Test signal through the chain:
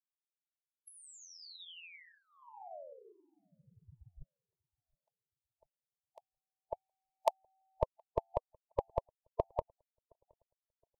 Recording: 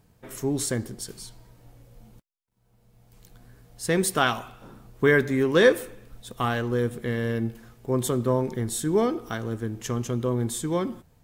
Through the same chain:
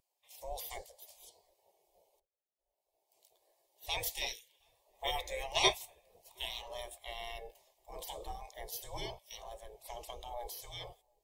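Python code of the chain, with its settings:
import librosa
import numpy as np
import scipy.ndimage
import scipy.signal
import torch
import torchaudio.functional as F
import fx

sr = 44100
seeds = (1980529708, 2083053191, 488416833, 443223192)

p1 = fx.dynamic_eq(x, sr, hz=400.0, q=1.6, threshold_db=-39.0, ratio=4.0, max_db=-7)
p2 = fx.spec_gate(p1, sr, threshold_db=-20, keep='weak')
p3 = fx.fixed_phaser(p2, sr, hz=590.0, stages=4)
p4 = p3 + fx.echo_filtered(p3, sr, ms=718, feedback_pct=54, hz=1100.0, wet_db=-22, dry=0)
p5 = fx.spectral_expand(p4, sr, expansion=1.5)
y = p5 * librosa.db_to_amplitude(8.5)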